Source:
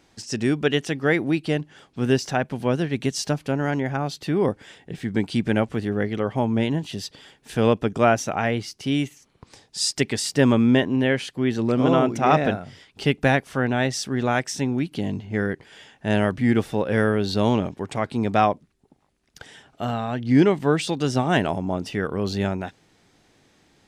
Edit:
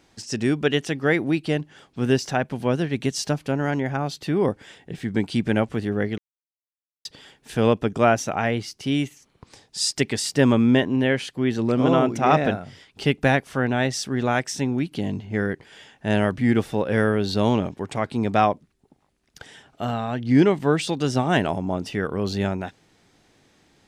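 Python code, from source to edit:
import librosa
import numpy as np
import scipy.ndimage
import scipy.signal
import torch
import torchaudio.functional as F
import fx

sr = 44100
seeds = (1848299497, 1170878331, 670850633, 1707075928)

y = fx.edit(x, sr, fx.silence(start_s=6.18, length_s=0.87), tone=tone)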